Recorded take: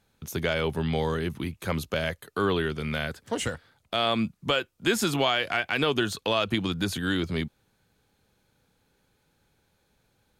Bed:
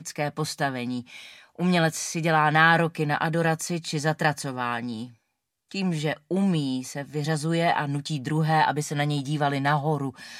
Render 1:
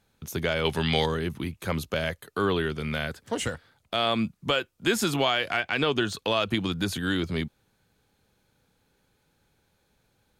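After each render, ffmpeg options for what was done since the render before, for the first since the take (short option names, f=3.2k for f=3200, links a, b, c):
-filter_complex "[0:a]asettb=1/sr,asplit=3[a][b][c];[a]atrim=end=0.654[d];[b]atrim=start=0.65:end=1.06,asetpts=PTS-STARTPTS,afade=t=in:d=0.004:c=qsin,afade=t=out:st=0.406:d=0.004:c=qsin,equalizer=f=4.2k:w=0.32:g=12.5[e];[c]atrim=start=1.056[f];[d][e]acrossfade=d=0.004:c1=hsin:c2=qsin[g];[g][f]acrossfade=d=0.004:c1=qsin:c2=hsin,asettb=1/sr,asplit=3[h][i][j];[h]atrim=end=5.614[k];[i]atrim=start=5.61:end=6.14,asetpts=PTS-STARTPTS,afade=t=in:d=0.004:c=qsin,afade=t=out:st=0.526:d=0.004:c=qsin,equalizer=f=12k:t=o:w=0.42:g=-15[l];[j]atrim=start=6.136[m];[k][l]acrossfade=d=0.004:c1=hsin:c2=qsin[n];[n][m]acrossfade=d=0.004:c1=qsin:c2=hsin"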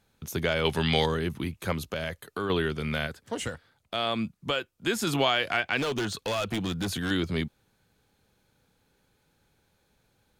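-filter_complex "[0:a]asettb=1/sr,asplit=3[a][b][c];[a]atrim=end=1.724[d];[b]atrim=start=1.72:end=2.5,asetpts=PTS-STARTPTS,afade=t=in:d=0.004:c=qsin,afade=t=out:st=0.776:d=0.004:c=qsin,acompressor=threshold=-30dB:ratio=2:attack=3.2:release=140:knee=1:detection=peak[e];[c]atrim=start=2.496[f];[d][e]acrossfade=d=0.004:c1=hsin:c2=qsin[g];[g][f]acrossfade=d=0.004:c1=qsin:c2=hsin,asettb=1/sr,asplit=3[h][i][j];[h]atrim=end=5.774[k];[i]atrim=start=5.77:end=7.11,asetpts=PTS-STARTPTS,afade=t=in:d=0.004:c=qsin,afade=t=out:st=1.336:d=0.004:c=qsin,asoftclip=type=hard:threshold=-25.5dB[l];[j]atrim=start=7.106[m];[k][l]acrossfade=d=0.004:c1=hsin:c2=qsin[n];[n][m]acrossfade=d=0.004:c1=qsin:c2=hsin,asplit=3[o][p][q];[o]atrim=end=3.072[r];[p]atrim=start=3.068:end=5.072,asetpts=PTS-STARTPTS,volume=-3.5dB[s];[q]atrim=start=5.068[t];[r][s]acrossfade=d=0.004:c1=hsin:c2=hsin[u];[u][t]acrossfade=d=0.004:c1=hsin:c2=hsin"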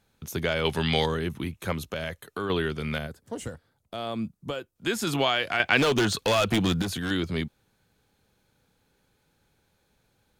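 -filter_complex "[0:a]asettb=1/sr,asplit=3[a][b][c];[a]atrim=end=1.084[d];[b]atrim=start=1.08:end=2.47,asetpts=PTS-STARTPTS,afade=t=in:d=0.004:c=qsin,afade=t=out:st=1.386:d=0.004:c=qsin,bandreject=f=4.7k:w=12[e];[c]atrim=start=2.466[f];[d][e]acrossfade=d=0.004:c1=hsin:c2=qsin[g];[g][f]acrossfade=d=0.004:c1=qsin:c2=hsin,asettb=1/sr,asplit=3[h][i][j];[h]atrim=end=2.984[k];[i]atrim=start=2.98:end=4.76,asetpts=PTS-STARTPTS,afade=t=in:d=0.004:c=qsin,afade=t=out:st=1.776:d=0.004:c=qsin,equalizer=f=2.5k:t=o:w=2.7:g=-10[l];[j]atrim=start=4.756[m];[k][l]acrossfade=d=0.004:c1=hsin:c2=qsin[n];[n][m]acrossfade=d=0.004:c1=qsin:c2=hsin,asplit=3[o][p][q];[o]atrim=end=5.602[r];[p]atrim=start=5.598:end=6.822,asetpts=PTS-STARTPTS,volume=6.5dB[s];[q]atrim=start=6.818[t];[r][s]acrossfade=d=0.004:c1=hsin:c2=hsin[u];[u][t]acrossfade=d=0.004:c1=hsin:c2=hsin"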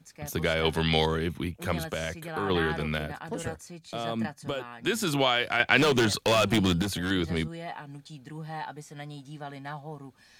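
-filter_complex "[1:a]volume=-15.5dB[a];[0:a][a]amix=inputs=2:normalize=0"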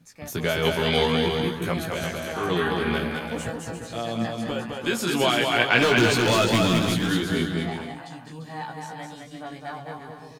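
-filter_complex "[0:a]asplit=2[a][b];[b]adelay=17,volume=-3dB[c];[a][c]amix=inputs=2:normalize=0,asplit=2[d][e];[e]aecho=0:1:210|346.5|435.2|492.9|530.4:0.631|0.398|0.251|0.158|0.1[f];[d][f]amix=inputs=2:normalize=0"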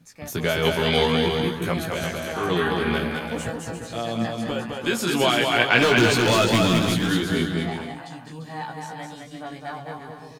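-af "volume=1.5dB"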